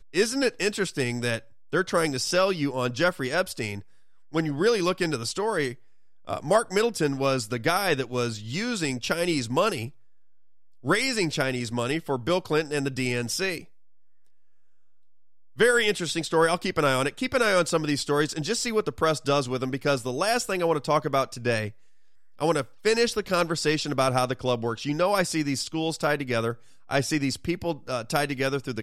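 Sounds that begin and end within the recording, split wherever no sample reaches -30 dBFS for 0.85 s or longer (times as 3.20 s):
10.86–13.58 s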